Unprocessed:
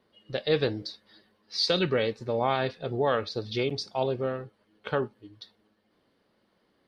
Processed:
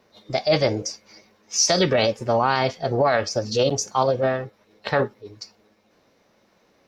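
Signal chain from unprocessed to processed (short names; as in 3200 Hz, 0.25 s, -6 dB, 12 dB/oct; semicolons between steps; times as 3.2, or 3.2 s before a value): limiter -17 dBFS, peak gain reduction 4 dB; formant shift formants +4 st; gain +8.5 dB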